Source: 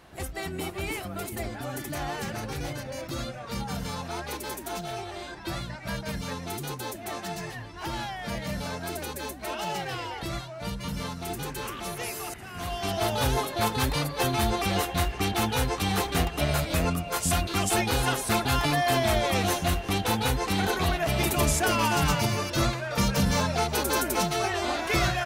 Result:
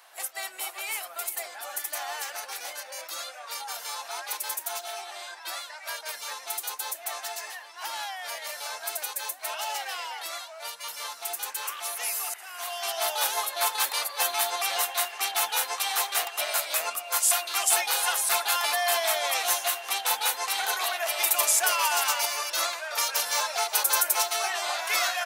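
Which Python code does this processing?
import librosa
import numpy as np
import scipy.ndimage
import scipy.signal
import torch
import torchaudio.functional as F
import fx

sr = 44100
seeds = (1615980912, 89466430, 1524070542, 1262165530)

y = scipy.signal.sosfilt(scipy.signal.butter(4, 680.0, 'highpass', fs=sr, output='sos'), x)
y = fx.high_shelf(y, sr, hz=6600.0, db=11.0)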